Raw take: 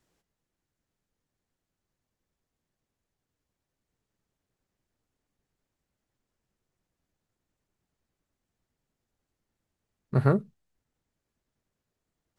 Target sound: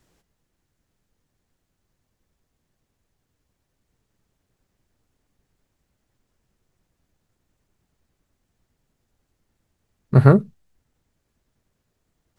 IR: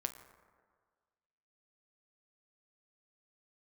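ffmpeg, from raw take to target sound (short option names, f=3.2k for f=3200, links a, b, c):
-af "lowshelf=f=130:g=5.5,volume=8.5dB"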